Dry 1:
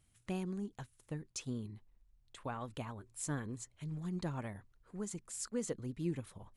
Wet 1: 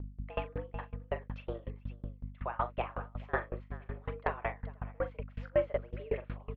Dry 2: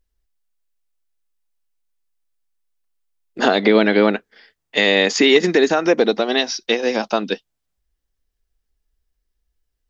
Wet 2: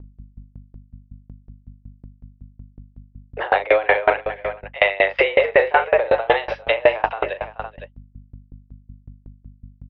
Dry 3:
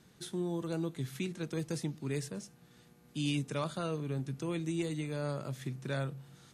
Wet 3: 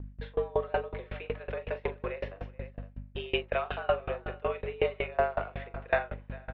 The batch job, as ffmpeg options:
-filter_complex "[0:a]agate=range=-33dB:threshold=-50dB:ratio=3:detection=peak,asplit=2[a][b];[b]acompressor=threshold=-26dB:ratio=6,volume=2.5dB[c];[a][c]amix=inputs=2:normalize=0,highpass=f=390:t=q:w=0.5412,highpass=f=390:t=q:w=1.307,lowpass=f=2.7k:t=q:w=0.5176,lowpass=f=2.7k:t=q:w=0.7071,lowpass=f=2.7k:t=q:w=1.932,afreqshift=100,aeval=exprs='val(0)+0.00631*(sin(2*PI*50*n/s)+sin(2*PI*2*50*n/s)/2+sin(2*PI*3*50*n/s)/3+sin(2*PI*4*50*n/s)/4+sin(2*PI*5*50*n/s)/5)':c=same,aecho=1:1:41|428|511:0.531|0.168|0.141,alimiter=level_in=8.5dB:limit=-1dB:release=50:level=0:latency=1,aeval=exprs='val(0)*pow(10,-27*if(lt(mod(5.4*n/s,1),2*abs(5.4)/1000),1-mod(5.4*n/s,1)/(2*abs(5.4)/1000),(mod(5.4*n/s,1)-2*abs(5.4)/1000)/(1-2*abs(5.4)/1000))/20)':c=same"

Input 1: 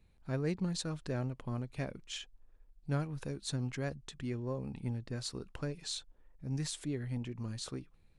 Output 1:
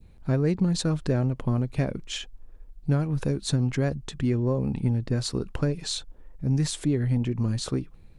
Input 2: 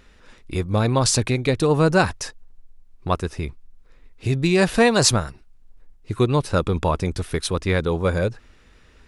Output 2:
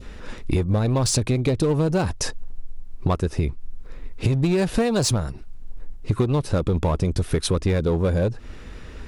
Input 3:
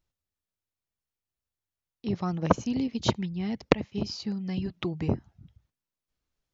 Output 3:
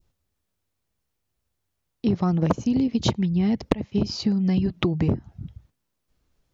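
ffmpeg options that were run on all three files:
-filter_complex "[0:a]tiltshelf=f=790:g=3.5,asplit=2[a][b];[b]aeval=exprs='0.119*(abs(mod(val(0)/0.119+3,4)-2)-1)':c=same,volume=-8dB[c];[a][c]amix=inputs=2:normalize=0,adynamicequalizer=threshold=0.0158:dfrequency=1600:dqfactor=0.87:tfrequency=1600:tqfactor=0.87:attack=5:release=100:ratio=0.375:range=2.5:mode=cutabove:tftype=bell,acompressor=threshold=-28dB:ratio=6,volume=9dB"

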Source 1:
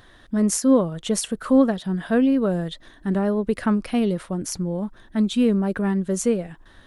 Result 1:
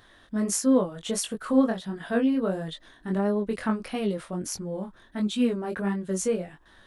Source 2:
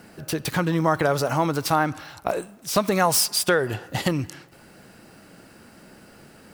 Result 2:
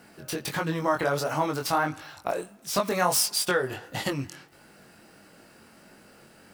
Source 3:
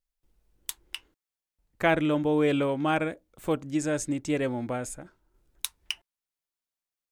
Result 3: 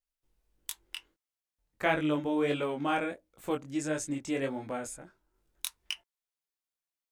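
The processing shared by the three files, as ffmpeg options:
-af "lowshelf=f=290:g=-5.5,flanger=delay=19:depth=4.1:speed=1.5"

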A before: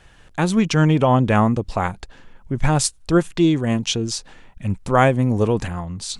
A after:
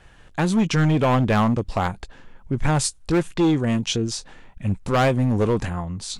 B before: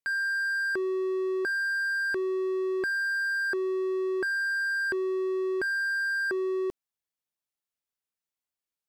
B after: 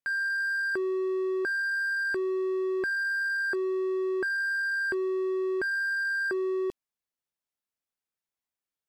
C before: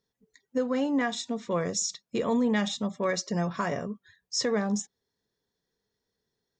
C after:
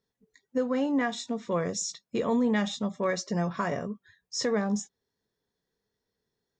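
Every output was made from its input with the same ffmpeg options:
-filter_complex "[0:a]acrossover=split=2700[a][b];[a]asoftclip=type=hard:threshold=-14.5dB[c];[b]flanger=delay=16.5:depth=4.1:speed=1.5[d];[c][d]amix=inputs=2:normalize=0"

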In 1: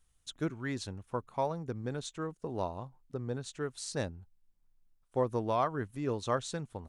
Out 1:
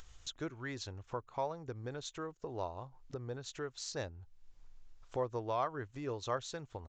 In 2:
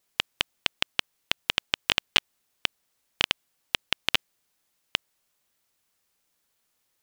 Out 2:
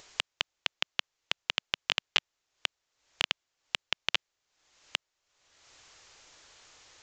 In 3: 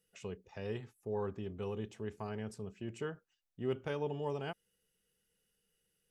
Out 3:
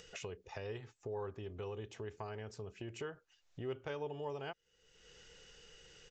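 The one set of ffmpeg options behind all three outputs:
-filter_complex "[0:a]aresample=16000,aresample=44100,asplit=2[a][b];[b]acompressor=threshold=-44dB:ratio=6,volume=1dB[c];[a][c]amix=inputs=2:normalize=0,equalizer=f=200:w=1.8:g=-12,acompressor=mode=upward:threshold=-34dB:ratio=2.5,volume=-5.5dB"

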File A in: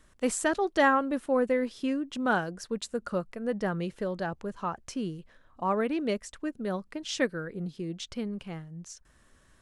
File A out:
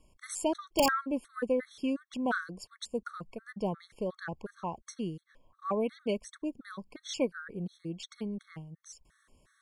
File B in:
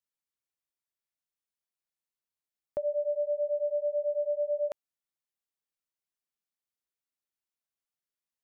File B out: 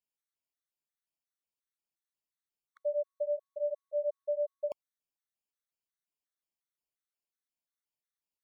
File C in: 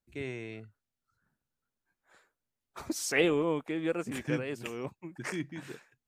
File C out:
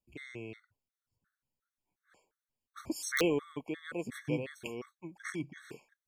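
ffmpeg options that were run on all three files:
-af "aeval=exprs='(mod(4.47*val(0)+1,2)-1)/4.47':c=same,afftfilt=real='re*gt(sin(2*PI*2.8*pts/sr)*(1-2*mod(floor(b*sr/1024/1100),2)),0)':imag='im*gt(sin(2*PI*2.8*pts/sr)*(1-2*mod(floor(b*sr/1024/1100),2)),0)':win_size=1024:overlap=0.75,volume=-1.5dB"

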